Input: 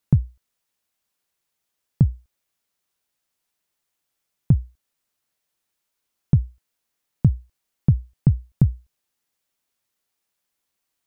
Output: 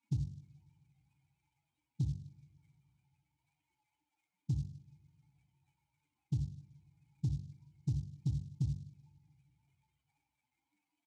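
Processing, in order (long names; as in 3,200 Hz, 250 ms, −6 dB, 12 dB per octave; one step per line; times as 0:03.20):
expanding power law on the bin magnitudes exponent 3.7
comb filter 1.3 ms, depth 58%
hum removal 47.9 Hz, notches 29
dynamic equaliser 160 Hz, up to −3 dB, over −24 dBFS, Q 1.3
brickwall limiter −17.5 dBFS, peak gain reduction 9 dB
formant filter u
coupled-rooms reverb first 0.5 s, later 2.4 s, from −19 dB, DRR 6.5 dB
short delay modulated by noise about 4,900 Hz, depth 0.035 ms
level +13 dB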